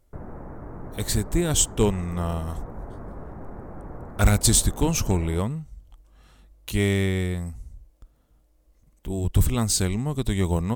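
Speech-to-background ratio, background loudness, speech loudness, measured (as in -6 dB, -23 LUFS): 16.5 dB, -40.5 LUFS, -24.0 LUFS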